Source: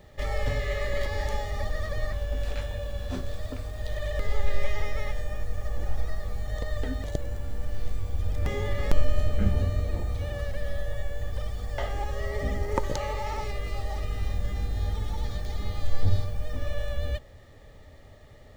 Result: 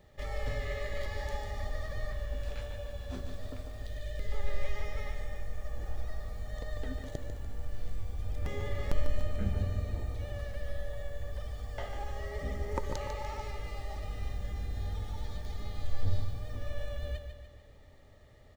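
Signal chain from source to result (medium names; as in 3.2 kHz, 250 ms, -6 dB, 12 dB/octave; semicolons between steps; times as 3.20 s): 3.86–4.32 s: peaking EQ 1 kHz -13.5 dB 1.1 oct; feedback delay 147 ms, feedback 52%, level -8 dB; trim -8 dB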